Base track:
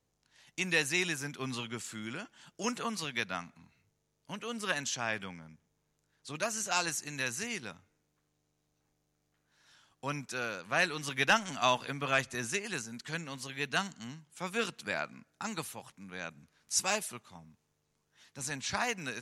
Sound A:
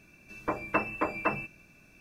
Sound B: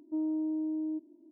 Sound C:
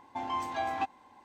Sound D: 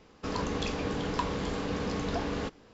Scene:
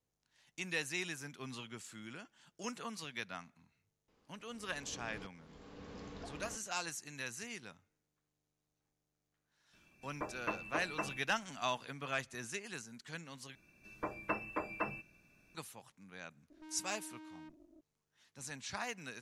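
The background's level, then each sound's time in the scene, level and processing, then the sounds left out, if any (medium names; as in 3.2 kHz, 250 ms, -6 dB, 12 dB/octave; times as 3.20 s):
base track -8.5 dB
4.08 s: add D -16.5 dB + slow attack 745 ms
9.73 s: add A -10.5 dB
13.55 s: replace with A -9 dB
16.50 s: add B -1 dB + valve stage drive 51 dB, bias 0.8
not used: C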